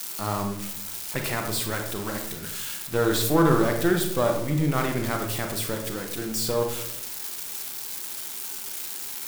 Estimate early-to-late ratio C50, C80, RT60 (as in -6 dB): 5.5 dB, 8.5 dB, 0.80 s